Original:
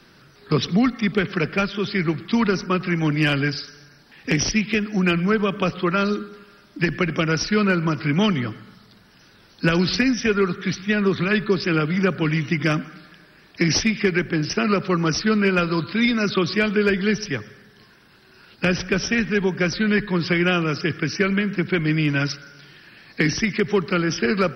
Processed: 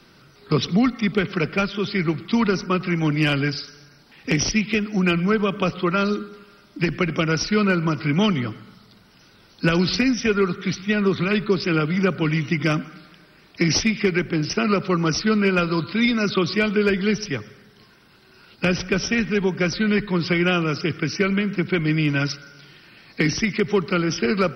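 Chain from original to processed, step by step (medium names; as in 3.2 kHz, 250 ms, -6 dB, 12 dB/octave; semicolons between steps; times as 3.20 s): band-stop 1.7 kHz, Q 8.6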